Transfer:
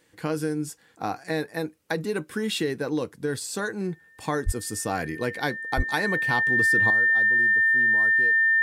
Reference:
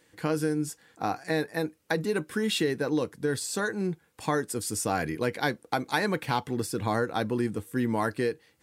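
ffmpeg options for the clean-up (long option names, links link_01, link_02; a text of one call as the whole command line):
ffmpeg -i in.wav -filter_complex "[0:a]bandreject=frequency=1800:width=30,asplit=3[link_01][link_02][link_03];[link_01]afade=type=out:start_time=4.45:duration=0.02[link_04];[link_02]highpass=frequency=140:width=0.5412,highpass=frequency=140:width=1.3066,afade=type=in:start_time=4.45:duration=0.02,afade=type=out:start_time=4.57:duration=0.02[link_05];[link_03]afade=type=in:start_time=4.57:duration=0.02[link_06];[link_04][link_05][link_06]amix=inputs=3:normalize=0,asplit=3[link_07][link_08][link_09];[link_07]afade=type=out:start_time=5.76:duration=0.02[link_10];[link_08]highpass=frequency=140:width=0.5412,highpass=frequency=140:width=1.3066,afade=type=in:start_time=5.76:duration=0.02,afade=type=out:start_time=5.88:duration=0.02[link_11];[link_09]afade=type=in:start_time=5.88:duration=0.02[link_12];[link_10][link_11][link_12]amix=inputs=3:normalize=0,asetnsamples=nb_out_samples=441:pad=0,asendcmd='6.9 volume volume 12dB',volume=0dB" out.wav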